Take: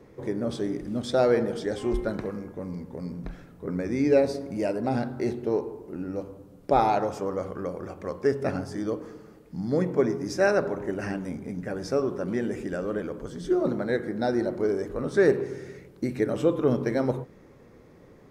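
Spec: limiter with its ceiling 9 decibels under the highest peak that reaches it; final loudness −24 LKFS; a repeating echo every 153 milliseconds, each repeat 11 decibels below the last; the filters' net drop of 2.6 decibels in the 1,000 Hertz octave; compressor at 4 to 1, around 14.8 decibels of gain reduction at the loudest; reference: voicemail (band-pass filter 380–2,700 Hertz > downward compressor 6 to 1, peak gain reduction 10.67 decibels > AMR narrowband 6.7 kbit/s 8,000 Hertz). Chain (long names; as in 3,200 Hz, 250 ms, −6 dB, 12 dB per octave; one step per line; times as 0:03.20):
parametric band 1,000 Hz −3.5 dB
downward compressor 4 to 1, threshold −35 dBFS
brickwall limiter −30 dBFS
band-pass filter 380–2,700 Hz
repeating echo 153 ms, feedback 28%, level −11 dB
downward compressor 6 to 1, threshold −46 dBFS
level +27.5 dB
AMR narrowband 6.7 kbit/s 8,000 Hz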